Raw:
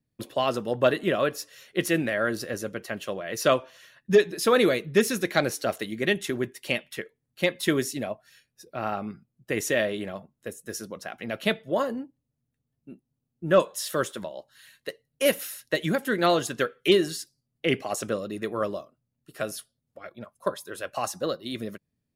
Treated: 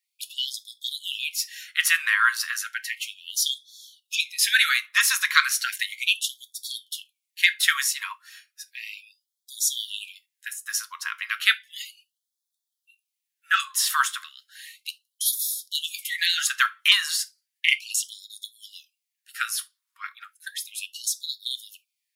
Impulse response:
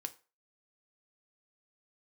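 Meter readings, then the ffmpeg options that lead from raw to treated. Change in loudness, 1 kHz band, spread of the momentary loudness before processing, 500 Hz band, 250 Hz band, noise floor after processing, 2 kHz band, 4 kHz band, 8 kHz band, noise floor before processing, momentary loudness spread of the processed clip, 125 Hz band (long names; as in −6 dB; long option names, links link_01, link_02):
+3.0 dB, −0.5 dB, 17 LU, below −40 dB, below −40 dB, −85 dBFS, +7.5 dB, +9.5 dB, +10.0 dB, −81 dBFS, 19 LU, below −40 dB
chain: -filter_complex "[0:a]asplit=2[link_01][link_02];[1:a]atrim=start_sample=2205,atrim=end_sample=3528[link_03];[link_02][link_03]afir=irnorm=-1:irlink=0,volume=7.5dB[link_04];[link_01][link_04]amix=inputs=2:normalize=0,afftfilt=real='re*gte(b*sr/1024,940*pow(3300/940,0.5+0.5*sin(2*PI*0.34*pts/sr)))':imag='im*gte(b*sr/1024,940*pow(3300/940,0.5+0.5*sin(2*PI*0.34*pts/sr)))':win_size=1024:overlap=0.75,volume=1dB"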